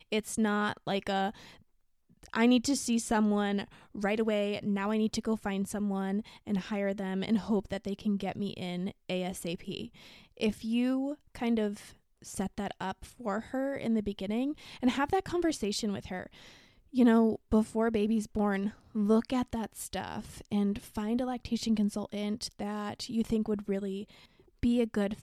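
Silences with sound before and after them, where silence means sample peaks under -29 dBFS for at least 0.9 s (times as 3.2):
1.29–2.34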